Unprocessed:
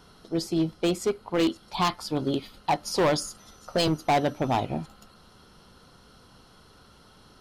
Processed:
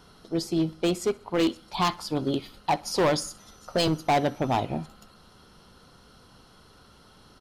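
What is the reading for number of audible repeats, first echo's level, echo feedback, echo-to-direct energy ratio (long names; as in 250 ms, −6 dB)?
2, −23.0 dB, 46%, −22.0 dB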